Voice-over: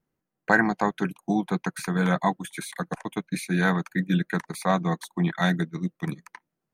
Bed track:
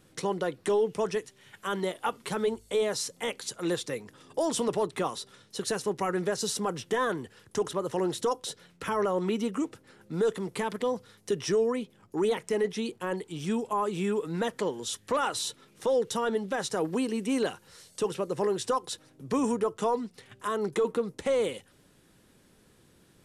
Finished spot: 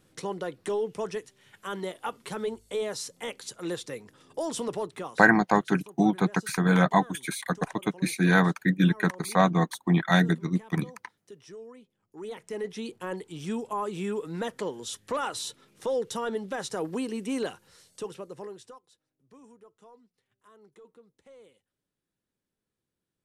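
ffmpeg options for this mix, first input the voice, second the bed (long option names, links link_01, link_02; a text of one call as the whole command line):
ffmpeg -i stem1.wav -i stem2.wav -filter_complex "[0:a]adelay=4700,volume=2dB[link_01];[1:a]volume=13dB,afade=type=out:start_time=4.76:duration=0.66:silence=0.16788,afade=type=in:start_time=12.07:duration=0.91:silence=0.149624,afade=type=out:start_time=17.42:duration=1.4:silence=0.0630957[link_02];[link_01][link_02]amix=inputs=2:normalize=0" out.wav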